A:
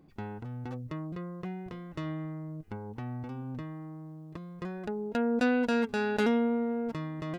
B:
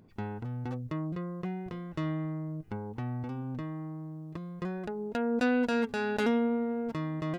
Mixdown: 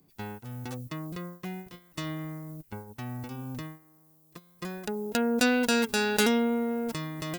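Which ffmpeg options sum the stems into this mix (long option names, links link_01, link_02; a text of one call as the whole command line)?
ffmpeg -i stem1.wav -i stem2.wav -filter_complex "[0:a]aemphasis=mode=production:type=50fm,agate=range=-10dB:threshold=-40dB:ratio=16:detection=peak,volume=3dB[link_01];[1:a]volume=-1,volume=-13dB[link_02];[link_01][link_02]amix=inputs=2:normalize=0,highshelf=frequency=3100:gain=10.5" out.wav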